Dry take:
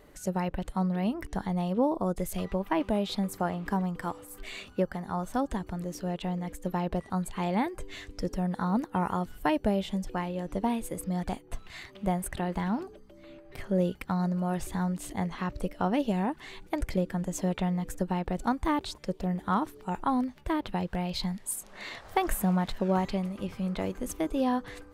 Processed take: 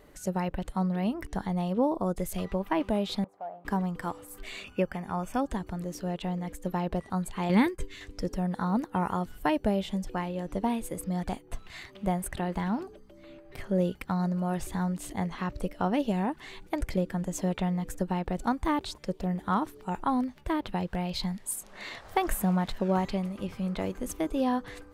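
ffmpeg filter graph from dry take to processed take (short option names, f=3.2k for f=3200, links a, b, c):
-filter_complex "[0:a]asettb=1/sr,asplit=3[a][b][c];[a]atrim=end=3.244[d];[b]atrim=start=3.24:end=3.65,asetpts=PTS-STARTPTS,afade=t=in:d=0.004:c=qsin,afade=t=out:st=0.406:d=0.004:c=qsin,asoftclip=type=hard:threshold=-28.5dB,bandpass=f=700:t=q:w=4.2[e];[c]atrim=start=3.646[f];[d][e]acrossfade=d=0.004:c1=hsin:c2=qsin[g];[g][f]acrossfade=d=0.004:c1=qsin:c2=hsin,asettb=1/sr,asplit=3[h][i][j];[h]atrim=end=4.644[k];[i]atrim=start=4.64:end=5.41,asetpts=PTS-STARTPTS,afade=t=in:d=0.004:c=qsin,afade=t=out:st=0.766:d=0.004:c=qsin,asuperstop=centerf=4000:order=4:qfactor=5.3,equalizer=f=2.5k:t=o:w=0.33:g=12.5[l];[j]atrim=start=5.406[m];[k][l]acrossfade=d=0.004:c1=hsin:c2=qsin[n];[n][m]acrossfade=d=0.004:c1=qsin:c2=hsin,asettb=1/sr,asplit=3[o][p][q];[o]atrim=end=7.494[r];[p]atrim=start=7.49:end=8.01,asetpts=PTS-STARTPTS,afade=t=in:d=0.004:c=qsin,afade=t=out:st=0.516:d=0.004:c=qsin,agate=range=-33dB:threshold=-35dB:ratio=3:release=100:detection=peak,equalizer=f=720:t=o:w=0.59:g=-13.5,acontrast=88[s];[q]atrim=start=8.006[t];[r][s]acrossfade=d=0.004:c1=hsin:c2=qsin[u];[u][t]acrossfade=d=0.004:c1=qsin:c2=hsin"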